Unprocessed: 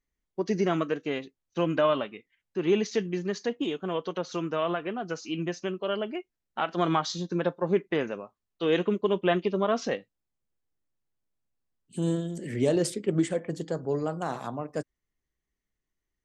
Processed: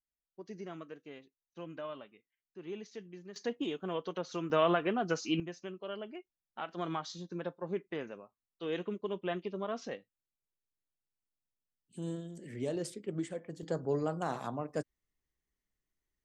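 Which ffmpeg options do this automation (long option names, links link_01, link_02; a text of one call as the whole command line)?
ffmpeg -i in.wav -af "asetnsamples=nb_out_samples=441:pad=0,asendcmd='3.36 volume volume -6dB;4.5 volume volume 1dB;5.4 volume volume -11.5dB;13.63 volume volume -3.5dB',volume=-18.5dB" out.wav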